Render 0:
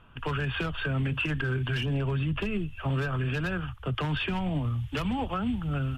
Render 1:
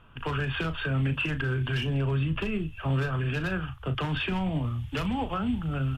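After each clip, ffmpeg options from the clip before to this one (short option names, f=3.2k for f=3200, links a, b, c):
-filter_complex "[0:a]asplit=2[a][b];[b]adelay=37,volume=-10dB[c];[a][c]amix=inputs=2:normalize=0"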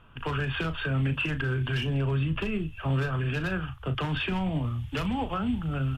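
-af anull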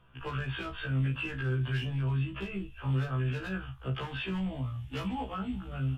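-af "afftfilt=real='re*1.73*eq(mod(b,3),0)':imag='im*1.73*eq(mod(b,3),0)':win_size=2048:overlap=0.75,volume=-4dB"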